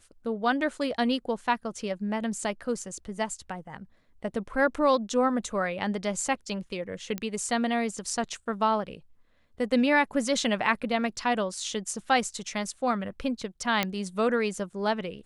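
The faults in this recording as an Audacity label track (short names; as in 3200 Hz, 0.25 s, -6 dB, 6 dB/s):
7.180000	7.180000	pop -17 dBFS
13.830000	13.830000	pop -10 dBFS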